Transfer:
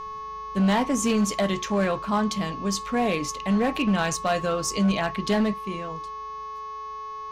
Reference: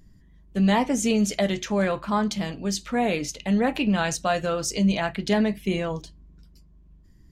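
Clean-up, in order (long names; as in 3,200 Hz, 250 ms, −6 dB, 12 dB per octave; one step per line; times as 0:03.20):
clipped peaks rebuilt −17 dBFS
hum removal 430.4 Hz, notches 15
notch filter 1,100 Hz, Q 30
level correction +8 dB, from 0:05.54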